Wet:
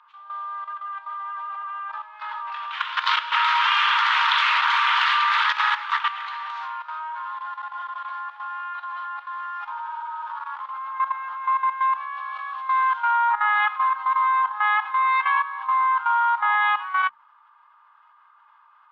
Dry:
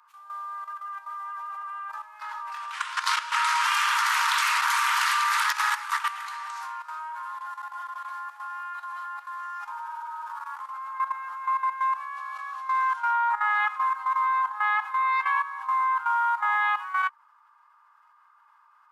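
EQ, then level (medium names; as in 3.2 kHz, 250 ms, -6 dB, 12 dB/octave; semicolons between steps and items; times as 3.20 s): tape spacing loss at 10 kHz 40 dB; peaking EQ 3.4 kHz +14.5 dB 1 oct; hum notches 50/100/150/200/250 Hz; +7.0 dB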